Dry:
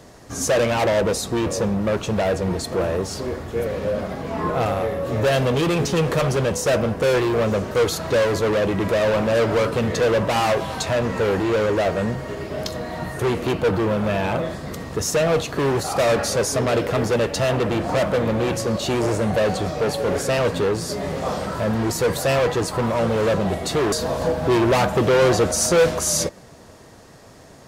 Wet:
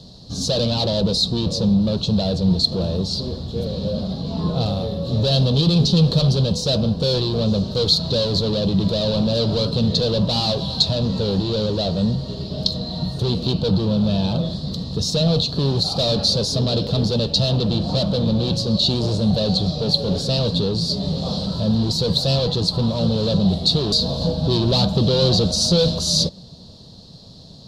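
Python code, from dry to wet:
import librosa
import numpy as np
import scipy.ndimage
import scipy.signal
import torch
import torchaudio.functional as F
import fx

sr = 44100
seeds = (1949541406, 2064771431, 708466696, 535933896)

y = fx.curve_eq(x, sr, hz=(110.0, 180.0, 330.0, 520.0, 960.0, 2100.0, 4100.0, 6300.0, 12000.0), db=(0, 5, -10, -8, -13, -26, 13, -9, -18))
y = y * librosa.db_to_amplitude(4.5)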